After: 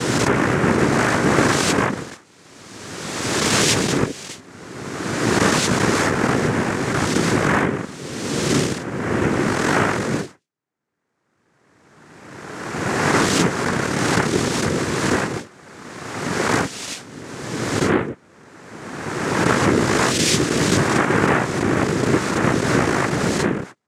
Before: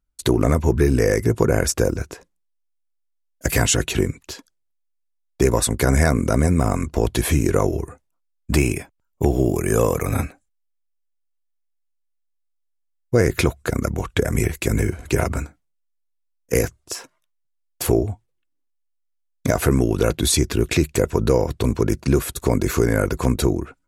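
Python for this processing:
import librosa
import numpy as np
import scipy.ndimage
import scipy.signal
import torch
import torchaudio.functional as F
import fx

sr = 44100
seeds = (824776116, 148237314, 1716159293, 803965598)

y = fx.spec_swells(x, sr, rise_s=2.06)
y = fx.noise_vocoder(y, sr, seeds[0], bands=3)
y = F.gain(torch.from_numpy(y), -2.5).numpy()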